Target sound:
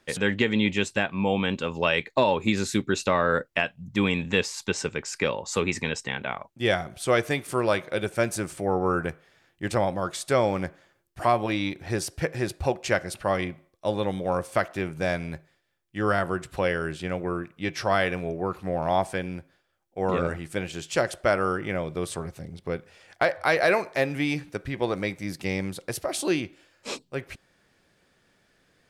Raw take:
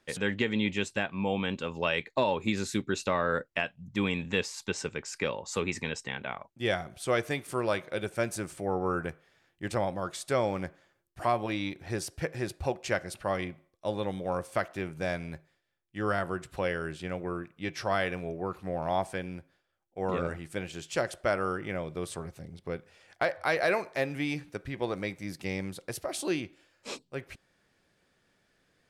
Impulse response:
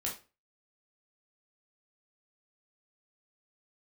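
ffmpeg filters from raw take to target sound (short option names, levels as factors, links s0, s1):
-af "volume=1.88"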